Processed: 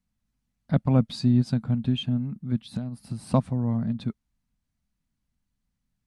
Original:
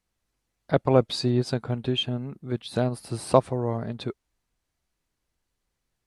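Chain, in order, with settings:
0:02.60–0:03.34: downward compressor 6 to 1, threshold −31 dBFS, peak gain reduction 11.5 dB
low shelf with overshoot 290 Hz +8.5 dB, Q 3
level −6.5 dB

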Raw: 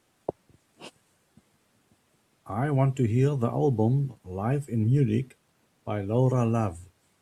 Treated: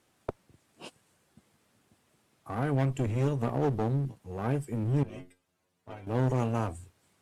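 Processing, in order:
asymmetric clip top −30 dBFS, bottom −15.5 dBFS
0:05.03–0:06.07: stiff-string resonator 88 Hz, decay 0.25 s, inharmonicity 0.002
level −1.5 dB

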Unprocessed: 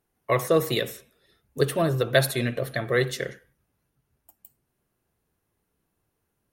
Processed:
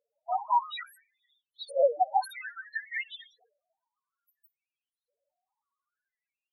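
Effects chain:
sub-harmonics by changed cycles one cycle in 2, inverted
auto-filter high-pass saw up 0.59 Hz 480–4,100 Hz
spectral peaks only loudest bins 2
level +1.5 dB

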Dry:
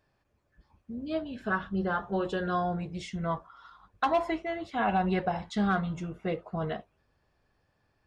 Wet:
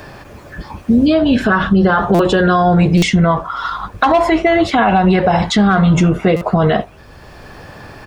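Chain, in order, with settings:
downward compressor, threshold −31 dBFS, peak gain reduction 9.5 dB
far-end echo of a speakerphone 80 ms, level −29 dB
boost into a limiter +31 dB
buffer that repeats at 0:02.14/0:02.97/0:06.36, samples 256, times 8
multiband upward and downward compressor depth 40%
level −3.5 dB

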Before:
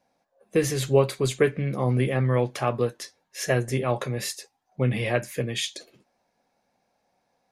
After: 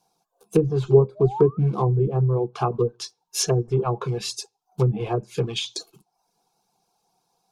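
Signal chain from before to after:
in parallel at −7 dB: log-companded quantiser 4 bits
on the sum: sound drawn into the spectrogram rise, 0:00.88–0:01.58, 350–1,300 Hz −33 dBFS
treble cut that deepens with the level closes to 490 Hz, closed at −16 dBFS
phaser with its sweep stopped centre 380 Hz, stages 8
on a send at −17 dB: convolution reverb RT60 0.40 s, pre-delay 3 ms
on the sum: reverb reduction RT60 0.54 s
high-shelf EQ 3,600 Hz +9 dB
level +4 dB

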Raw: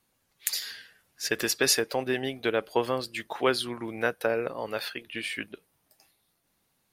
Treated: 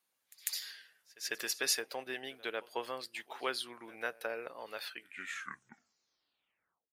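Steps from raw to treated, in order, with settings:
turntable brake at the end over 2.07 s
high-pass filter 840 Hz 6 dB per octave
echo ahead of the sound 148 ms −22.5 dB
level −7.5 dB

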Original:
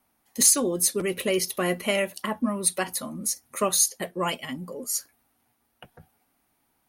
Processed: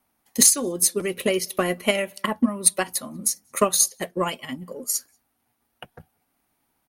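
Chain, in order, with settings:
slap from a distant wall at 32 metres, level −29 dB
transient designer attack +8 dB, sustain −2 dB
level −1 dB

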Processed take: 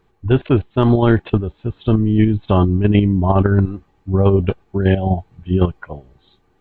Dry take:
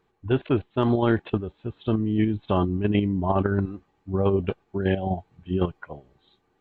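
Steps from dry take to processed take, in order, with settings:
low-shelf EQ 100 Hz +11.5 dB
level +6 dB

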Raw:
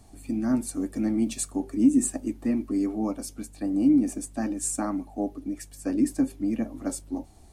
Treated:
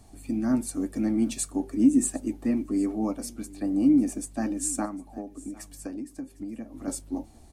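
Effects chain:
0:04.85–0:06.88: downward compressor 16 to 1, threshold −33 dBFS, peak gain reduction 16.5 dB
on a send: single-tap delay 755 ms −21.5 dB

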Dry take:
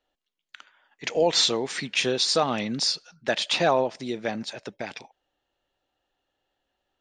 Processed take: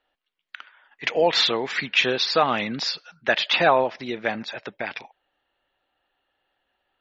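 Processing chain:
low-pass filter 2,200 Hz 12 dB per octave
tilt shelving filter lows −7 dB
level +6 dB
MP3 32 kbit/s 48,000 Hz

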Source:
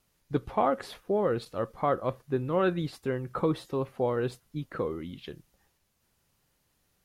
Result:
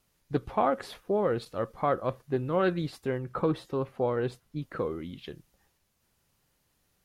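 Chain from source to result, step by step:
0:03.18–0:04.62: high-shelf EQ 4,700 Hz −5 dB
highs frequency-modulated by the lows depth 0.12 ms

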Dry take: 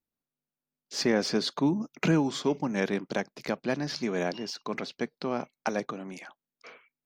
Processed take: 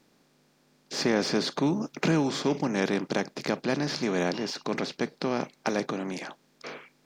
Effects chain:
compressor on every frequency bin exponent 0.6
level −2 dB

